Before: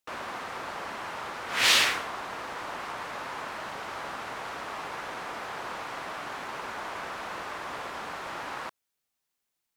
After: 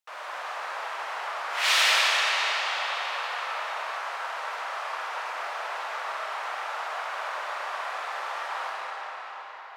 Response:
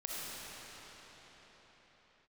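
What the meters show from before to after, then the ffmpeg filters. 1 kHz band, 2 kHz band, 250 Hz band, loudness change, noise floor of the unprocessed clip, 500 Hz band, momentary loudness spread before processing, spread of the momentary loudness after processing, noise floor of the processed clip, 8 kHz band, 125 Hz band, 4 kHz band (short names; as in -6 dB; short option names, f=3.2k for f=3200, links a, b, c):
+4.5 dB, +4.0 dB, under -15 dB, +3.0 dB, -83 dBFS, +1.5 dB, 12 LU, 13 LU, -40 dBFS, 0.0 dB, under -40 dB, +2.5 dB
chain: -filter_complex "[0:a]highpass=f=590:w=0.5412,highpass=f=590:w=1.3066,highshelf=f=5.8k:g=-4.5[a];[1:a]atrim=start_sample=2205[b];[a][b]afir=irnorm=-1:irlink=0,volume=1.5dB"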